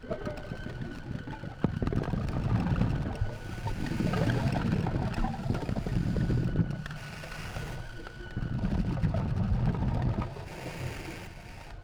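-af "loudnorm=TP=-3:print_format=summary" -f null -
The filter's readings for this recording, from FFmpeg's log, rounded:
Input Integrated:    -32.6 LUFS
Input True Peak:     -13.8 dBTP
Input LRA:             2.4 LU
Input Threshold:     -42.9 LUFS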